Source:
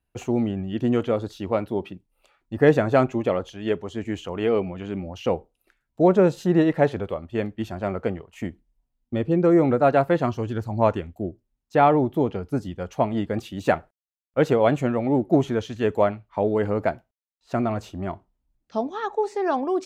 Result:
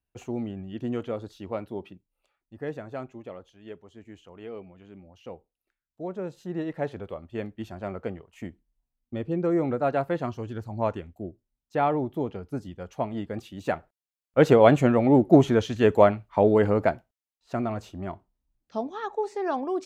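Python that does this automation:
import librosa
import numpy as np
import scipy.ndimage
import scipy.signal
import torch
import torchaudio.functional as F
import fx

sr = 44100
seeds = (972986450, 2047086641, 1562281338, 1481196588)

y = fx.gain(x, sr, db=fx.line((1.91, -8.5), (2.64, -17.5), (6.11, -17.5), (7.19, -7.0), (13.75, -7.0), (14.51, 3.0), (16.53, 3.0), (17.55, -4.5)))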